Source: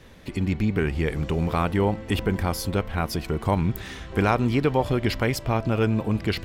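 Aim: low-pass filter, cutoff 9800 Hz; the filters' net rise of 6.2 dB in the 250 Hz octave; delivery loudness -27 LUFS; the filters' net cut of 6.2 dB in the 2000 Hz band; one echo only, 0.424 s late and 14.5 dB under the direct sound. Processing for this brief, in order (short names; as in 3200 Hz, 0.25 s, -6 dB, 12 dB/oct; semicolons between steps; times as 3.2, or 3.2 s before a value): LPF 9800 Hz; bell 250 Hz +8 dB; bell 2000 Hz -8.5 dB; echo 0.424 s -14.5 dB; gain -5.5 dB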